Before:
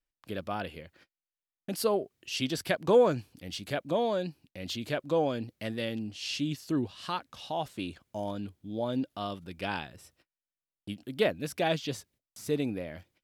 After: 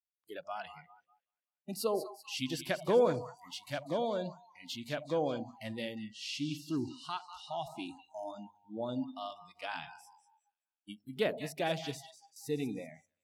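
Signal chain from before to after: two-band feedback delay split 800 Hz, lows 81 ms, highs 194 ms, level -10.5 dB; spectral noise reduction 27 dB; trim -5 dB

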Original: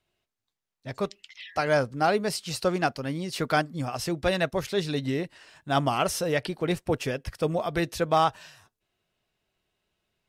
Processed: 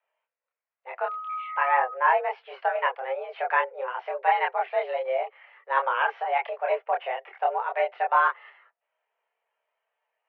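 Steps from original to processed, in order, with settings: 1.05–1.93 s: whistle 1 kHz -31 dBFS; mistuned SSB +260 Hz 230–2300 Hz; chorus voices 4, 0.28 Hz, delay 27 ms, depth 1.5 ms; trim +4.5 dB

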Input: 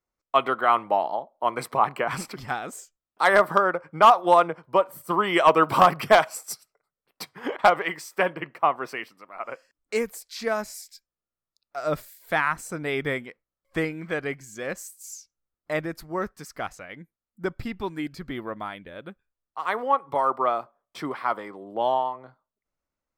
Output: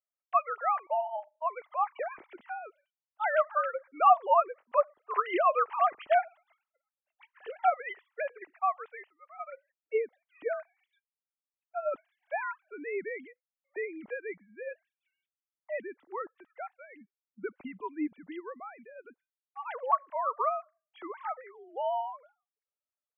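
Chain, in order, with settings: formants replaced by sine waves; trim -7.5 dB

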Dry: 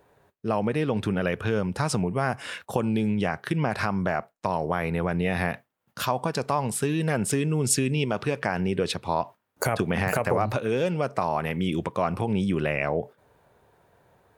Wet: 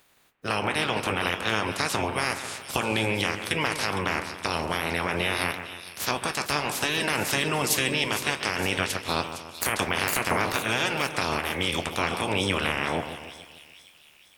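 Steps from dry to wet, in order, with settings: spectral peaks clipped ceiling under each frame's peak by 28 dB; two-band feedback delay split 2.8 kHz, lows 145 ms, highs 460 ms, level -10 dB; flange 0.54 Hz, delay 6.7 ms, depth 7.3 ms, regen -65%; trim +3 dB

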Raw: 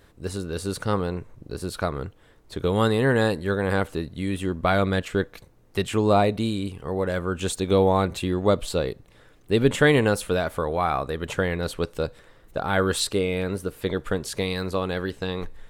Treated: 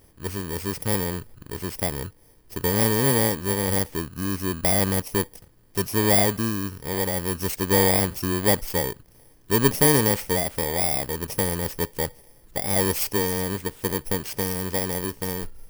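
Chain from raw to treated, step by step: bit-reversed sample order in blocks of 32 samples

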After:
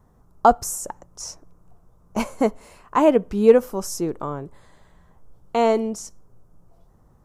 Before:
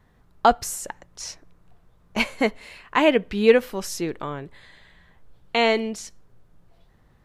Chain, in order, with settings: high-order bell 2.7 kHz -14 dB; trim +2.5 dB

